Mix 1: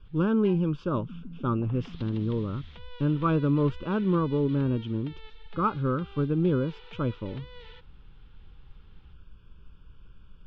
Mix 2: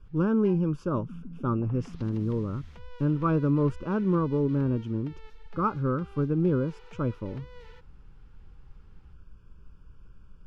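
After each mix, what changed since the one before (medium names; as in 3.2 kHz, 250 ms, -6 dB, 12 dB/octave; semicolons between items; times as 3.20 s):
master: remove resonant low-pass 3.5 kHz, resonance Q 3.9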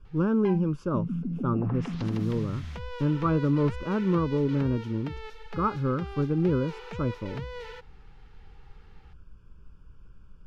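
background +11.0 dB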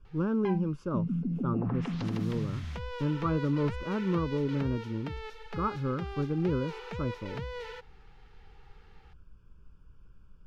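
speech -4.5 dB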